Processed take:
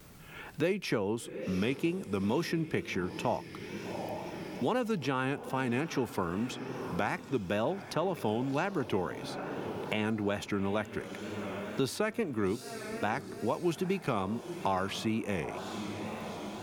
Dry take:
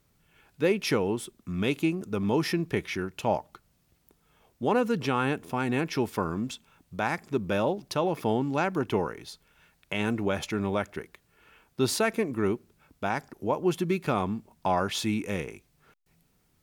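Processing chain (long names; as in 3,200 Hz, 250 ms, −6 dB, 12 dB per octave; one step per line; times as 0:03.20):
feedback delay with all-pass diffusion 783 ms, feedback 46%, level −15 dB
tape wow and flutter 78 cents
multiband upward and downward compressor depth 70%
level −4.5 dB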